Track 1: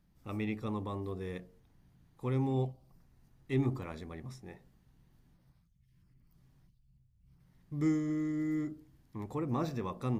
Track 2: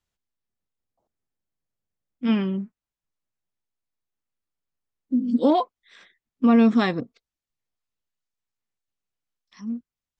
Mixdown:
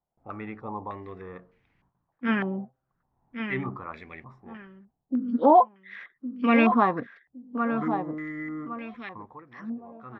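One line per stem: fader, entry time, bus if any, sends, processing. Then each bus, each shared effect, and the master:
+1.0 dB, 0.00 s, no send, no echo send, gate with hold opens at -56 dBFS; auto duck -19 dB, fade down 0.40 s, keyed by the second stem
-1.0 dB, 0.00 s, no send, echo send -8 dB, none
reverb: none
echo: feedback delay 1112 ms, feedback 29%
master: tilt EQ +2 dB/octave; step-sequenced low-pass 3.3 Hz 750–2300 Hz

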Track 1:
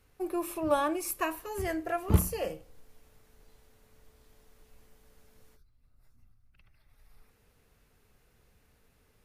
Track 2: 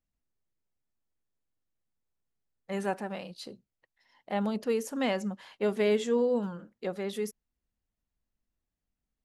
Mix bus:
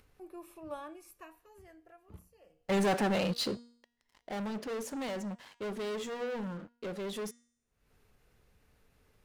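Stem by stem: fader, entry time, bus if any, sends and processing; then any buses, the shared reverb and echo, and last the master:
-15.0 dB, 0.00 s, no send, auto duck -19 dB, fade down 1.95 s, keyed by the second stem
3.39 s -7.5 dB -> 4.14 s -17 dB, 0.00 s, no send, gain riding within 5 dB 2 s; waveshaping leveller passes 5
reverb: none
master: treble shelf 8 kHz -5.5 dB; de-hum 237.8 Hz, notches 40; upward compressor, threshold -53 dBFS

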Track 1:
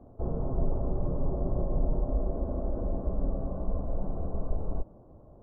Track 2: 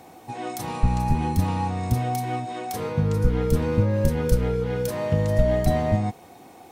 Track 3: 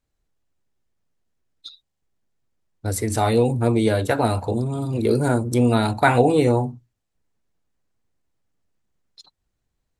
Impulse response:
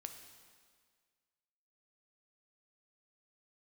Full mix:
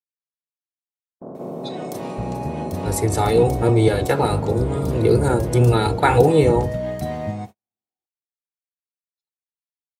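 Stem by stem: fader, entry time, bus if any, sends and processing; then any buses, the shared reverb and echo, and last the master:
+0.5 dB, 1.20 s, no send, spectral levelling over time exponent 0.2; high-pass 170 Hz 24 dB/octave
-5.5 dB, 1.35 s, send -8 dB, none
-0.5 dB, 0.00 s, no send, octave divider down 1 oct, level +2 dB; comb 2.3 ms, depth 65%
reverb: on, RT60 1.8 s, pre-delay 4 ms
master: high-pass 100 Hz 12 dB/octave; gate -35 dBFS, range -50 dB

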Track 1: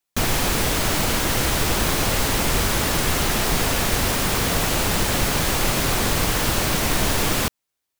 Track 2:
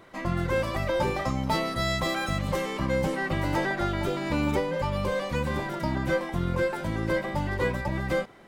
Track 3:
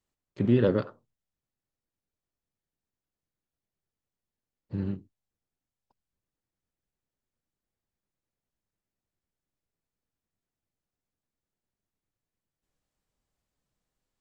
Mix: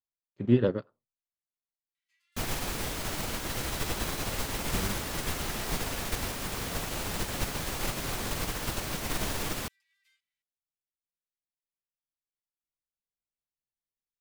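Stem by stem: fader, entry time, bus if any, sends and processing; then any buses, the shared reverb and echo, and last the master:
-2.5 dB, 2.20 s, no send, none
-5.0 dB, 1.95 s, no send, inverse Chebyshev high-pass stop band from 680 Hz, stop band 60 dB
+2.0 dB, 0.00 s, no send, none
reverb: none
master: upward expansion 2.5:1, over -32 dBFS

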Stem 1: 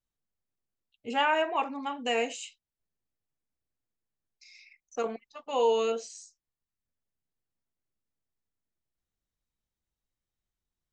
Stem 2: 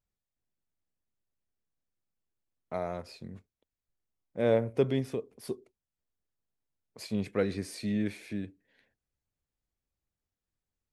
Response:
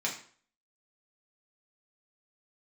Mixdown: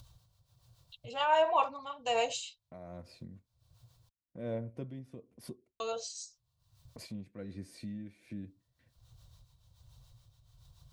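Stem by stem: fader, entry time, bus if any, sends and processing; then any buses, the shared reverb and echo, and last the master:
+1.5 dB, 0.00 s, muted 4.09–5.80 s, no send, graphic EQ 125/250/500/1000/2000/4000 Hz +11/-12/+5/+8/-9/+11 dB; harmonic tremolo 7 Hz, depth 50%, crossover 630 Hz; resonant low shelf 160 Hz +11.5 dB, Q 1.5
-14.0 dB, 0.00 s, no send, gate with hold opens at -55 dBFS; bass shelf 360 Hz +9.5 dB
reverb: none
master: upward compressor, threshold -36 dBFS; tremolo 1.3 Hz, depth 57%; comb of notches 420 Hz

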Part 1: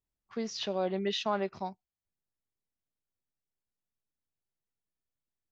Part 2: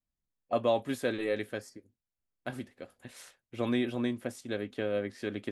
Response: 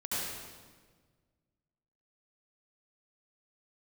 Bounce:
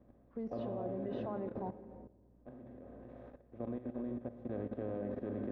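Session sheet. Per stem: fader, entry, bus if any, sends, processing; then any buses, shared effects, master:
+1.0 dB, 0.00 s, send -17.5 dB, hum 60 Hz, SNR 21 dB
0.98 s -3.5 dB -> 1.63 s -15 dB -> 4.26 s -15 dB -> 4.72 s -8 dB, 0.00 s, send -10 dB, spectral levelling over time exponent 0.4; bass shelf 180 Hz +8 dB; auto duck -23 dB, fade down 1.40 s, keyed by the first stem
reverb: on, RT60 1.5 s, pre-delay 65 ms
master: Bessel low-pass 660 Hz, order 2; level held to a coarse grid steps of 13 dB

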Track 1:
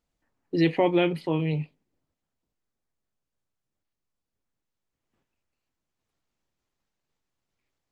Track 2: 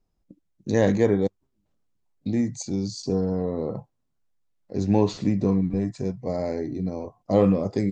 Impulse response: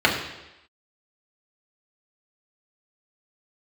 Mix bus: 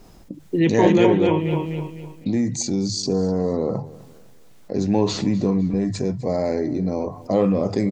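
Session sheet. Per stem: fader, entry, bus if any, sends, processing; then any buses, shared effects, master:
+1.5 dB, 0.00 s, no send, echo send -4 dB, elliptic low-pass 3.5 kHz; small resonant body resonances 220/390/940 Hz, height 9 dB
0.0 dB, 0.00 s, no send, echo send -20 dB, bass shelf 69 Hz -8 dB; hum notches 50/100/150 Hz; level flattener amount 50%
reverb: none
echo: feedback delay 253 ms, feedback 36%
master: none

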